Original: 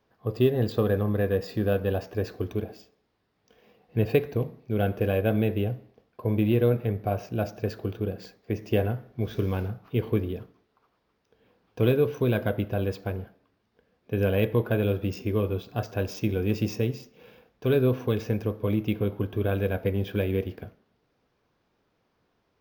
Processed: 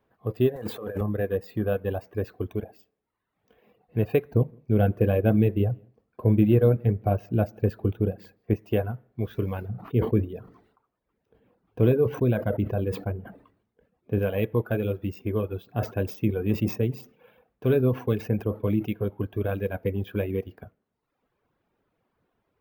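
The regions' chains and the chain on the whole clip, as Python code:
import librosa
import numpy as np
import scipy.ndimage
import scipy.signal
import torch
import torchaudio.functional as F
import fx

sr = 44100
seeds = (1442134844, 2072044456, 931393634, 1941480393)

y = fx.chain(x, sr, fx.zero_step(step_db=-36.5),
    fx.highpass(hz=190.0, slope=6),
    fx.over_compress(threshold_db=-30.0, ratio=-1.0), at=(0.56, 1.01))
y = fx.chain(y, sr, fx.low_shelf(hz=430.0, db=7.5),
    fx.echo_single(ms=168, db=-21.0), at=(4.31, 8.54))
y = fx.chain(y, sr, fx.tilt_shelf(db=3.5, hz=720.0),
    fx.sustainer(db_per_s=76.0), at=(9.69, 14.19))
y = fx.chain(y, sr, fx.highpass(hz=130.0, slope=6),
    fx.low_shelf(hz=220.0, db=7.5),
    fx.sustainer(db_per_s=110.0), at=(15.67, 18.86))
y = fx.peak_eq(y, sr, hz=5300.0, db=-12.0, octaves=1.2)
y = fx.dereverb_blind(y, sr, rt60_s=0.87)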